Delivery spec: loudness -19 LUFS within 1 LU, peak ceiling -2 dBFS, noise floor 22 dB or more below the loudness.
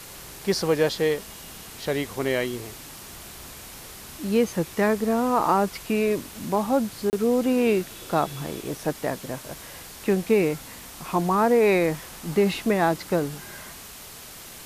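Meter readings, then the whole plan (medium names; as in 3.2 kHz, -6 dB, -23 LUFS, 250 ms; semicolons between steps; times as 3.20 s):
dropouts 1; longest dropout 29 ms; noise floor -42 dBFS; noise floor target -47 dBFS; loudness -24.5 LUFS; peak level -9.0 dBFS; loudness target -19.0 LUFS
-> interpolate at 7.10 s, 29 ms; noise print and reduce 6 dB; trim +5.5 dB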